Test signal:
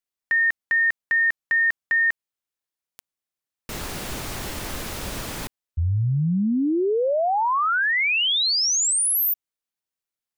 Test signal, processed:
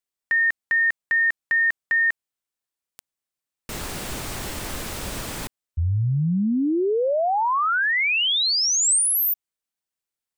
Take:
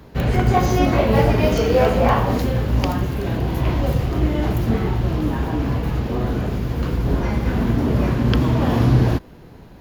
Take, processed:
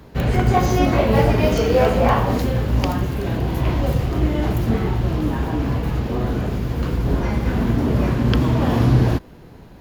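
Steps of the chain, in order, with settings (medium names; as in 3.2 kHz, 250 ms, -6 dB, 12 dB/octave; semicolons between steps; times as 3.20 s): peaking EQ 8.2 kHz +3.5 dB 0.27 oct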